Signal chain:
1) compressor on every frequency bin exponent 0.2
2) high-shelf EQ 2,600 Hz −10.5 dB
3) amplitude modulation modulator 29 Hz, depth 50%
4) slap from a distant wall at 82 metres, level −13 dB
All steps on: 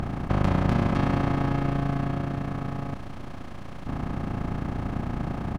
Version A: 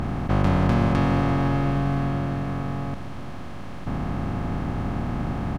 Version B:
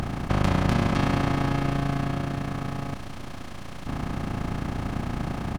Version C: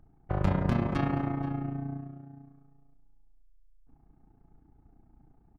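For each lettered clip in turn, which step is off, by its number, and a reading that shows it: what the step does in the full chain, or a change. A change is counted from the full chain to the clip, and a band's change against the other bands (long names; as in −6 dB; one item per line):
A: 3, change in integrated loudness +3.0 LU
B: 2, 4 kHz band +6.0 dB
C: 1, 4 kHz band −2.5 dB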